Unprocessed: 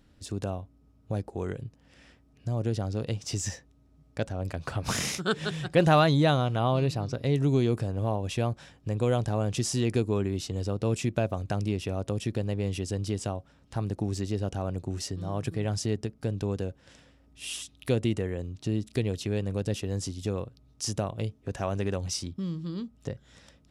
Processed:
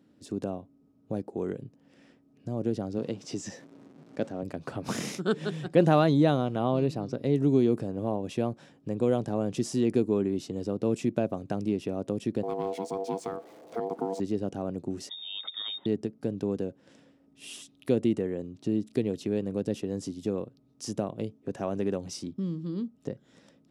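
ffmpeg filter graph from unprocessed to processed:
-filter_complex "[0:a]asettb=1/sr,asplit=3[s0][s1][s2];[s0]atrim=end=2.984[s3];[s1]atrim=start=2.98:end=4.43,asetpts=PTS-STARTPTS,afade=t=in:d=0.004:c=qsin,afade=t=out:st=1.446:d=0.004:c=qsin,aeval=exprs='val(0)+0.5*0.00562*sgn(val(0))':c=same,highpass=130,lowpass=7600[s4];[s2]atrim=start=4.426[s5];[s3][s4]acrossfade=d=0.004:c1=hsin:c2=qsin[s6];[s6][s5]acrossfade=d=0.004:c1=qsin:c2=hsin,asettb=1/sr,asplit=3[s7][s8][s9];[s7]atrim=end=12.434[s10];[s8]atrim=start=12.43:end=14.2,asetpts=PTS-STARTPTS,afade=t=in:d=0.004:c=qsin,afade=t=out:st=1.766:d=0.004:c=qsin,aeval=exprs='val(0)+0.5*0.00668*sgn(val(0))':c=same,aeval=exprs='val(0)*sin(2*PI*580*n/s)':c=same[s11];[s9]atrim=start=14.196[s12];[s10][s11]acrossfade=d=0.004:c1=hsin:c2=qsin[s13];[s13][s12]acrossfade=d=0.004:c1=qsin:c2=hsin,asettb=1/sr,asplit=3[s14][s15][s16];[s14]atrim=end=15.094[s17];[s15]atrim=start=15.09:end=15.86,asetpts=PTS-STARTPTS,afade=t=in:d=0.004:c=qsin,afade=t=out:st=0.766:d=0.004:c=qsin,equalizer=f=1400:t=o:w=0.24:g=-4.5,lowpass=f=3200:t=q:w=0.5098,lowpass=f=3200:t=q:w=0.6013,lowpass=f=3200:t=q:w=0.9,lowpass=f=3200:t=q:w=2.563,afreqshift=-3800[s18];[s16]atrim=start=15.856[s19];[s17][s18]acrossfade=d=0.004:c1=hsin:c2=qsin[s20];[s20][s19]acrossfade=d=0.004:c1=qsin:c2=hsin,highpass=160,equalizer=f=270:w=0.46:g=12,volume=0.422"

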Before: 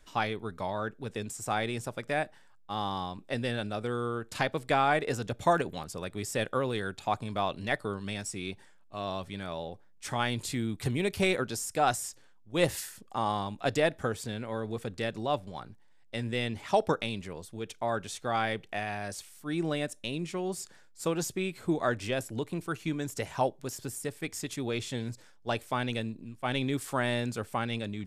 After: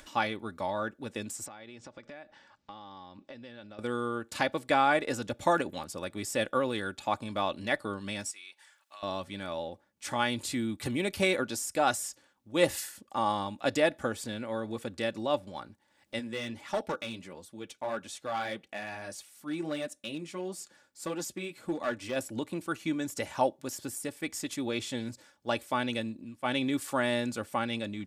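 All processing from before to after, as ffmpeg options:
-filter_complex "[0:a]asettb=1/sr,asplit=3[s0][s1][s2];[s0]atrim=end=1.464[s3];[s1]atrim=start=1.46:end=3.79,asetpts=PTS-STARTPTS,afade=t=in:d=0.004:c=qsin,afade=t=out:st=2.326:d=0.004:c=qsin,lowpass=f=6000:w=0.5412,lowpass=f=6000:w=1.3066,acompressor=threshold=0.00708:ratio=12:attack=3.2:release=140:knee=1:detection=peak[s4];[s2]atrim=start=3.786[s5];[s3][s4]acrossfade=d=0.004:c1=hsin:c2=qsin[s6];[s6][s5]acrossfade=d=0.004:c1=qsin:c2=hsin,asettb=1/sr,asplit=3[s7][s8][s9];[s7]atrim=end=8.314[s10];[s8]atrim=start=8.31:end=9.03,asetpts=PTS-STARTPTS,afade=t=in:d=0.004:c=qsin,afade=t=out:st=0.716:d=0.004:c=qsin,highpass=1300,acompressor=threshold=0.00316:ratio=2:attack=3.2:release=140:knee=1:detection=peak[s11];[s9]atrim=start=9.026[s12];[s10][s11]acrossfade=d=0.004:c1=hsin:c2=qsin[s13];[s13][s12]acrossfade=d=0.004:c1=qsin:c2=hsin,asettb=1/sr,asplit=3[s14][s15][s16];[s14]atrim=end=16.194[s17];[s15]atrim=start=16.19:end=22.16,asetpts=PTS-STARTPTS,afade=t=in:d=0.004:c=qsin,afade=t=out:st=5.966:d=0.004:c=qsin,highpass=f=45:p=1,flanger=delay=3.6:depth=4.4:regen=-41:speed=1.6:shape=triangular,aeval=exprs='clip(val(0),-1,0.0355)':c=same[s18];[s16]atrim=start=22.156[s19];[s17][s18]acrossfade=d=0.004:c1=hsin:c2=qsin[s20];[s20][s19]acrossfade=d=0.004:c1=qsin:c2=hsin,highpass=f=110:p=1,aecho=1:1:3.5:0.47,acompressor=mode=upward:threshold=0.00501:ratio=2.5"

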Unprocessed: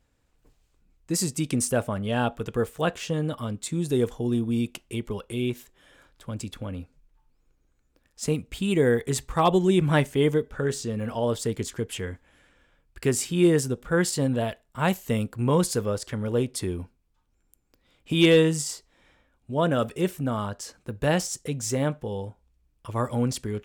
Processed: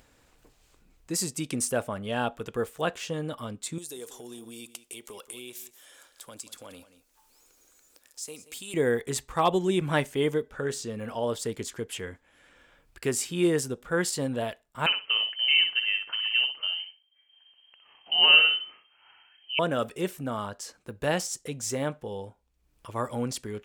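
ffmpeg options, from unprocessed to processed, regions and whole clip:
-filter_complex "[0:a]asettb=1/sr,asplit=3[s0][s1][s2];[s0]atrim=end=3.784[s3];[s1]atrim=start=3.78:end=8.74,asetpts=PTS-STARTPTS,afade=t=in:d=0.004:c=qsin,afade=t=out:st=4.956:d=0.004:c=qsin,bass=f=250:g=-14,treble=f=4000:g=14,acompressor=threshold=0.0141:ratio=3:attack=3.2:release=140:knee=1:detection=peak,aecho=1:1:181:0.178,atrim=end_sample=218736[s4];[s2]atrim=start=8.736[s5];[s3][s4]acrossfade=d=0.004:c1=hsin:c2=qsin[s6];[s6][s5]acrossfade=d=0.004:c1=qsin:c2=hsin,asettb=1/sr,asplit=3[s7][s8][s9];[s7]atrim=end=14.864[s10];[s8]atrim=start=14.86:end=19.59,asetpts=PTS-STARTPTS,afade=t=in:d=0.004:c=qsin,afade=t=out:st=4.726:d=0.004:c=qsin,aecho=1:1:61|122|183:0.447|0.0893|0.0179,atrim=end_sample=208593,lowpass=f=2700:t=q:w=0.5098,lowpass=f=2700:t=q:w=0.6013,lowpass=f=2700:t=q:w=0.9,lowpass=f=2700:t=q:w=2.563,afreqshift=-3200[s11];[s9]atrim=start=19.586[s12];[s10][s11]acrossfade=d=0.004:c1=hsin:c2=qsin[s13];[s13][s12]acrossfade=d=0.004:c1=qsin:c2=hsin,lowshelf=f=220:g=-9.5,acompressor=mode=upward:threshold=0.00447:ratio=2.5,volume=0.841"

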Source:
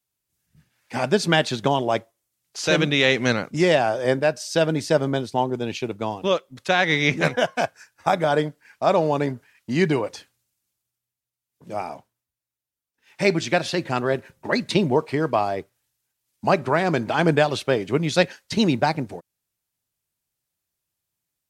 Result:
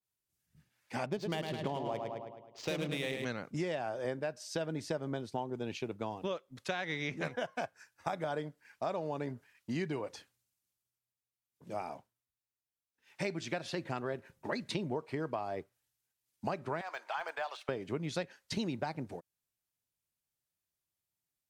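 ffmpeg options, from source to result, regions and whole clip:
-filter_complex "[0:a]asettb=1/sr,asplit=3[s0][s1][s2];[s0]atrim=end=1.064[s3];[s1]atrim=start=1.06:end=3.25,asetpts=PTS-STARTPTS,afade=t=in:d=0.004:c=qsin,afade=t=out:st=2.186:d=0.004:c=qsin,aecho=1:1:106|212|318|424|530|636|742:0.501|0.271|0.146|0.0789|0.0426|0.023|0.0124,atrim=end_sample=96579,adynamicsmooth=sensitivity=2.5:basefreq=1800,equalizer=f=1500:t=o:w=0.34:g=-9.5[s4];[s2]atrim=start=3.246[s5];[s3][s4]acrossfade=d=0.004:c1=hsin:c2=qsin[s6];[s6][s5]acrossfade=d=0.004:c1=qsin:c2=hsin,asettb=1/sr,asplit=3[s7][s8][s9];[s7]atrim=end=16.814[s10];[s8]atrim=start=16.81:end=17.69,asetpts=PTS-STARTPTS,afade=t=in:d=0.004:c=qsin,afade=t=out:st=0.876:d=0.004:c=qsin,highpass=f=750:w=0.5412,highpass=f=750:w=1.3066,deesser=0.85,highshelf=f=8900:g=-6[s11];[s9]atrim=start=17.686[s12];[s10][s11]acrossfade=d=0.004:c1=hsin:c2=qsin[s13];[s13][s12]acrossfade=d=0.004:c1=qsin:c2=hsin,acompressor=threshold=0.0631:ratio=6,adynamicequalizer=threshold=0.00631:dfrequency=2400:dqfactor=0.7:tfrequency=2400:tqfactor=0.7:attack=5:release=100:ratio=0.375:range=2:mode=cutabove:tftype=highshelf,volume=0.376"

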